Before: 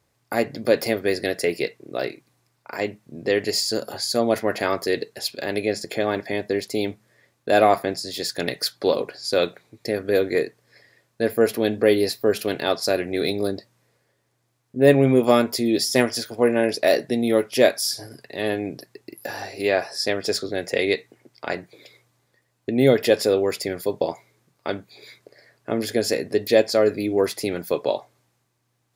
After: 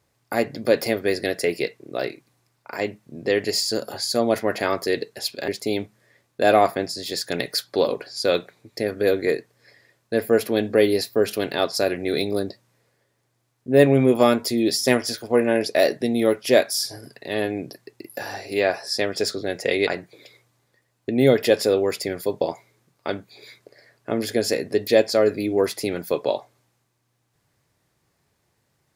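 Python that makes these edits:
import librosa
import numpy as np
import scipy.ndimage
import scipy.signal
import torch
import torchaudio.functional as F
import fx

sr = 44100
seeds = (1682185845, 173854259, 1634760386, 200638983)

y = fx.edit(x, sr, fx.cut(start_s=5.48, length_s=1.08),
    fx.cut(start_s=20.95, length_s=0.52), tone=tone)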